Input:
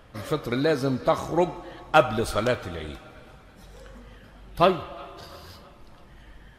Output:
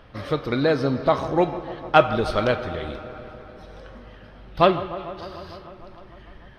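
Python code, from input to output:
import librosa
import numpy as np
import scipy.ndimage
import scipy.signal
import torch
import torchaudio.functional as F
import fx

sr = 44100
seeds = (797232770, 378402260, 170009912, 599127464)

y = scipy.signal.savgol_filter(x, 15, 4, mode='constant')
y = fx.echo_wet_lowpass(y, sr, ms=150, feedback_pct=78, hz=1600.0, wet_db=-15.0)
y = y * 10.0 ** (2.5 / 20.0)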